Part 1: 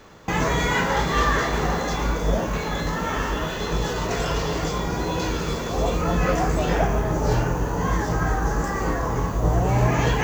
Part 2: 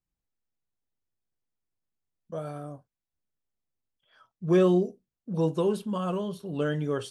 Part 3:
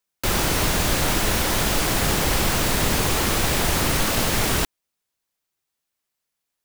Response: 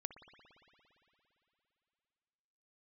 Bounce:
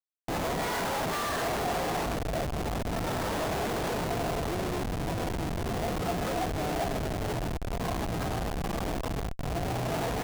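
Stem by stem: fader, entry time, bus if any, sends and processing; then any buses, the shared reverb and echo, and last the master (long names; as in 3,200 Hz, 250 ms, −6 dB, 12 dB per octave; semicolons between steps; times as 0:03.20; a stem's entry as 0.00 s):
−5.0 dB, 0.00 s, no bus, send −16 dB, echo send −18.5 dB, notch filter 3,100 Hz, Q 26
0.0 dB, 0.00 s, bus A, no send, no echo send, phaser with its sweep stopped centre 480 Hz, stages 6
−11.0 dB, 0.40 s, bus A, send −11 dB, no echo send, automatic ducking −19 dB, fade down 0.25 s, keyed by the second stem
bus A: 0.0 dB, brickwall limiter −24.5 dBFS, peak gain reduction 9 dB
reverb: on, RT60 3.2 s, pre-delay 57 ms
echo: repeating echo 103 ms, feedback 46%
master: high-pass filter 510 Hz 6 dB per octave; comparator with hysteresis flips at −28 dBFS; parametric band 700 Hz +7.5 dB 0.31 octaves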